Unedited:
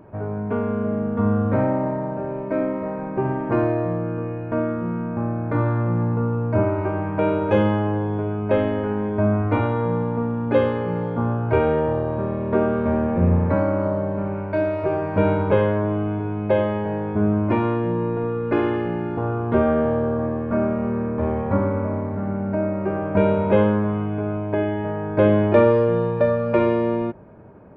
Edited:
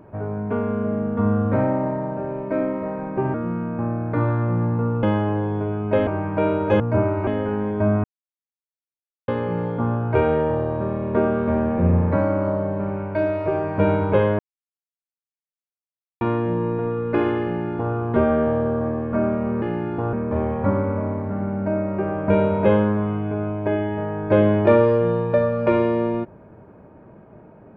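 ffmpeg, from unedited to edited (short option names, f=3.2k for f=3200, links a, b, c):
-filter_complex "[0:a]asplit=12[a][b][c][d][e][f][g][h][i][j][k][l];[a]atrim=end=3.342[m];[b]atrim=start=4.718:end=6.412[n];[c]atrim=start=7.608:end=8.652[o];[d]atrim=start=6.878:end=7.612[p];[e]atrim=start=6.408:end=6.882[q];[f]atrim=start=8.648:end=9.42,asetpts=PTS-STARTPTS,afade=t=out:st=0.768:d=0.004:c=hsin[r];[g]atrim=start=9.42:end=10.66,asetpts=PTS-STARTPTS,volume=0[s];[h]atrim=start=10.66:end=15.77,asetpts=PTS-STARTPTS,afade=t=in:d=0.004:c=hsin,afade=t=out:st=5.106:d=0.004:c=hsin[t];[i]atrim=start=15.77:end=17.59,asetpts=PTS-STARTPTS,volume=0[u];[j]atrim=start=17.59:end=21.002,asetpts=PTS-STARTPTS,afade=t=in:d=0.004:c=hsin[v];[k]atrim=start=18.808:end=19.322[w];[l]atrim=start=20.998[x];[m][n]acrossfade=d=0.004:c1=hsin:c2=hsin[y];[y][o]acrossfade=d=0.004:c1=hsin:c2=hsin[z];[z][p]acrossfade=d=0.004:c1=hsin:c2=hsin[aa];[aa][q]acrossfade=d=0.004:c1=hsin:c2=hsin[ab];[r][s][t][u][v]concat=n=5:v=0:a=1[ac];[ab][ac]acrossfade=d=0.004:c1=hsin:c2=hsin[ad];[ad][w]acrossfade=d=0.004:c1=hsin:c2=hsin[ae];[ae][x]acrossfade=d=0.004:c1=hsin:c2=hsin"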